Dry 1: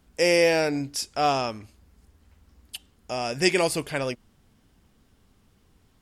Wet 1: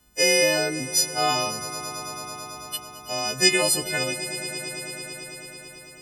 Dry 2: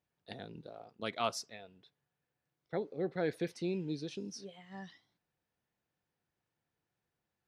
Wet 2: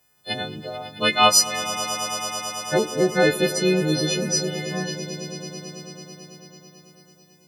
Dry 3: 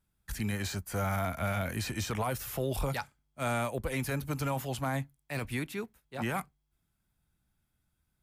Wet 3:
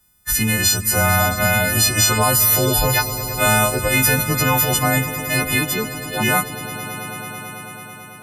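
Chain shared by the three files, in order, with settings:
frequency quantiser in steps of 3 st; swelling echo 0.11 s, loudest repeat 5, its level -15.5 dB; normalise peaks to -3 dBFS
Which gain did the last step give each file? -1.5, +15.5, +13.0 dB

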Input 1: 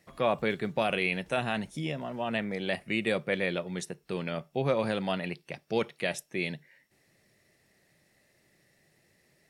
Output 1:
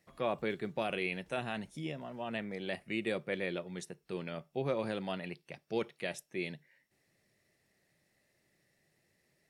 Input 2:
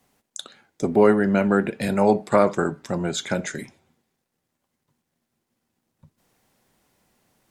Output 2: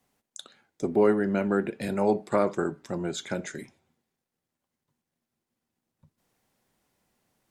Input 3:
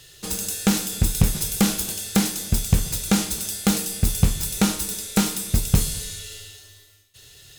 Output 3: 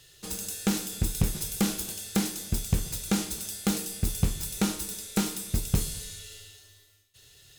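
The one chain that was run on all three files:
dynamic EQ 350 Hz, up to +5 dB, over -39 dBFS, Q 2.5; gain -7.5 dB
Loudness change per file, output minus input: -6.5, -5.5, -7.0 LU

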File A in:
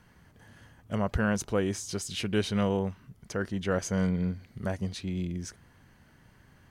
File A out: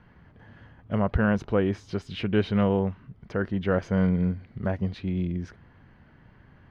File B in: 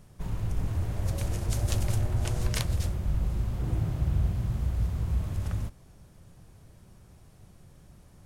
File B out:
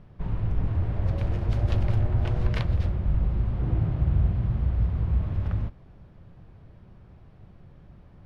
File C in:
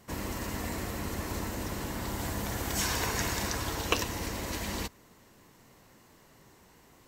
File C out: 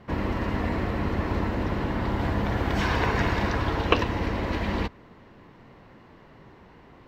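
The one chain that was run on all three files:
air absorption 350 m; match loudness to -27 LUFS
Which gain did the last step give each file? +5.0, +4.0, +9.5 dB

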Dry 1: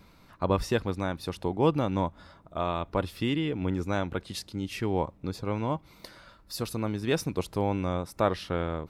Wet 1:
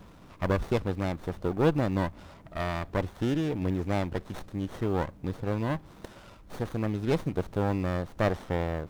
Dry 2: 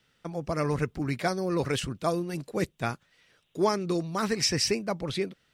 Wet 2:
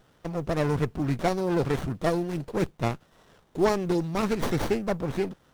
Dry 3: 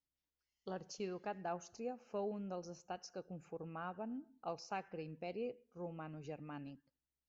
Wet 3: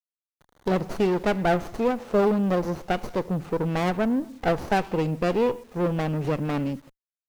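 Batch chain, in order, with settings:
G.711 law mismatch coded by mu; running maximum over 17 samples; normalise peaks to -12 dBFS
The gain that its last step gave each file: -0.5, +2.0, +17.5 dB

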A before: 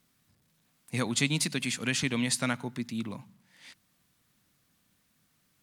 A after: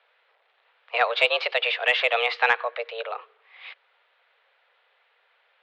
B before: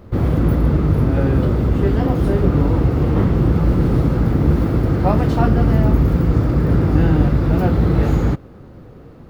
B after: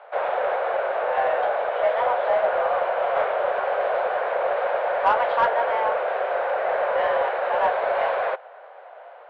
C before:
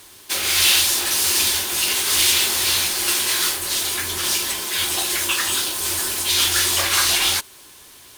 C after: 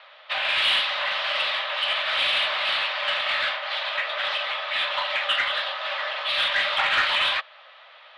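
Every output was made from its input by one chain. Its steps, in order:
mistuned SSB +230 Hz 330–3400 Hz; overdrive pedal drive 12 dB, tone 2000 Hz, clips at -7 dBFS; match loudness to -23 LUFS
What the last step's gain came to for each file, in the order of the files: +8.0, -1.5, -1.0 dB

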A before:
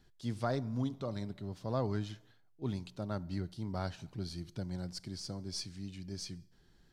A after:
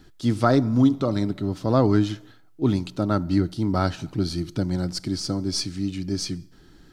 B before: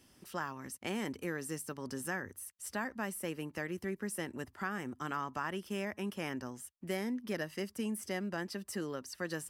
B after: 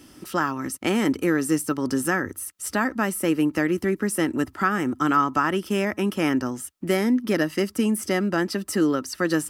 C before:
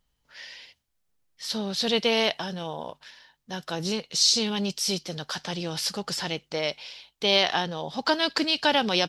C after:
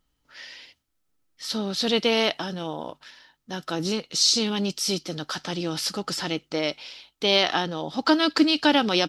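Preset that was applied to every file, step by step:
small resonant body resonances 300/1300 Hz, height 10 dB, ringing for 45 ms; match loudness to -24 LUFS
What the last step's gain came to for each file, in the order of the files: +13.0, +12.5, +0.5 dB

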